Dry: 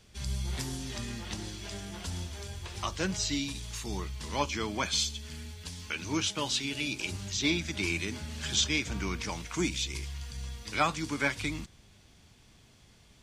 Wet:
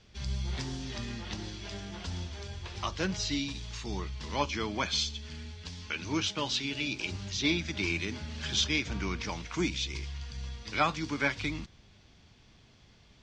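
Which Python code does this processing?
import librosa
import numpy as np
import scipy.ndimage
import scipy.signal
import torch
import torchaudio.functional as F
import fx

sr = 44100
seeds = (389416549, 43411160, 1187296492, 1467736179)

y = scipy.signal.sosfilt(scipy.signal.butter(4, 5800.0, 'lowpass', fs=sr, output='sos'), x)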